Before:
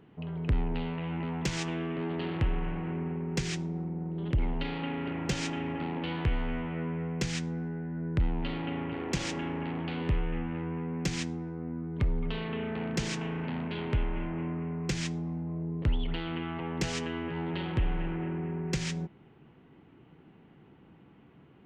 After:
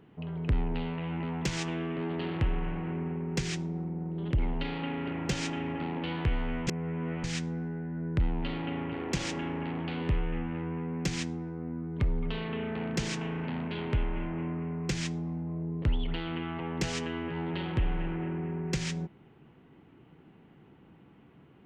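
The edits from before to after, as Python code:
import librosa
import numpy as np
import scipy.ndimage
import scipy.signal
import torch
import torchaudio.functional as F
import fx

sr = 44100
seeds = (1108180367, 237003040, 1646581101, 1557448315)

y = fx.edit(x, sr, fx.reverse_span(start_s=6.67, length_s=0.57), tone=tone)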